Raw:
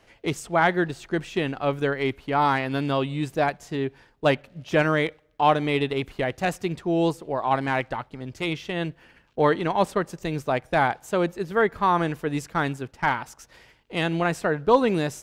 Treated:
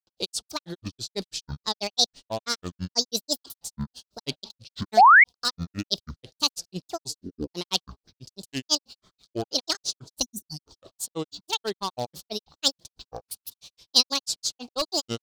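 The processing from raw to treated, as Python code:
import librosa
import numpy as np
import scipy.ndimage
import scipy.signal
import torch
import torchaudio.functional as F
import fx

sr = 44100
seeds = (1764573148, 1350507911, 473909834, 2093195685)

p1 = fx.spec_box(x, sr, start_s=10.27, length_s=0.33, low_hz=250.0, high_hz=3700.0, gain_db=-29)
p2 = fx.granulator(p1, sr, seeds[0], grain_ms=100.0, per_s=6.1, spray_ms=100.0, spread_st=12)
p3 = fx.over_compress(p2, sr, threshold_db=-26.0, ratio=-0.5)
p4 = p2 + F.gain(torch.from_numpy(p3), -3.0).numpy()
p5 = np.clip(p4, -10.0 ** (-14.5 / 20.0), 10.0 ** (-14.5 / 20.0))
p6 = fx.high_shelf_res(p5, sr, hz=3000.0, db=14.0, q=3.0)
p7 = fx.spec_paint(p6, sr, seeds[1], shape='rise', start_s=4.97, length_s=0.27, low_hz=650.0, high_hz=2300.0, level_db=-5.0)
y = F.gain(torch.from_numpy(p7), -7.0).numpy()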